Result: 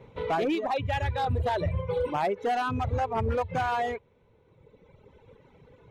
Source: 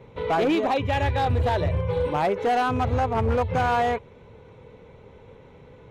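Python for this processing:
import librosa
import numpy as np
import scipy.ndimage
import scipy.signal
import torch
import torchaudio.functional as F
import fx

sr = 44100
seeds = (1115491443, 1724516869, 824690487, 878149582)

y = fx.dereverb_blind(x, sr, rt60_s=1.9)
y = fx.rider(y, sr, range_db=10, speed_s=0.5)
y = y * 10.0 ** (-3.0 / 20.0)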